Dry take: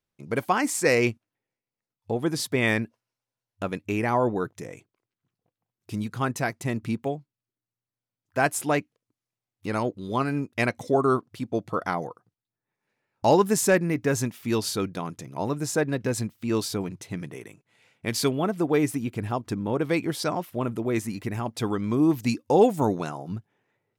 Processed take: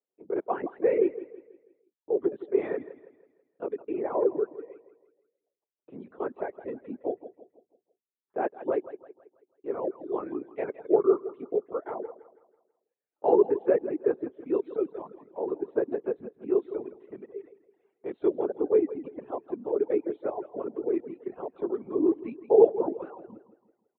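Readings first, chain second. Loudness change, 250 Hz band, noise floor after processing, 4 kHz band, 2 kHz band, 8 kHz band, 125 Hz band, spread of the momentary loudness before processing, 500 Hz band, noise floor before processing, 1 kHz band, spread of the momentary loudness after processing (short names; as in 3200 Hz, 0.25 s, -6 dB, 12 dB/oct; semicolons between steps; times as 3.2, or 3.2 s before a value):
-2.5 dB, -6.0 dB, under -85 dBFS, under -30 dB, -18.0 dB, under -40 dB, under -20 dB, 13 LU, +0.5 dB, under -85 dBFS, -8.5 dB, 19 LU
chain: LPC vocoder at 8 kHz whisper; ladder band-pass 460 Hz, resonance 55%; on a send: feedback echo 0.163 s, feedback 44%, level -9 dB; on the sum: reverb removal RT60 1 s; gain +7.5 dB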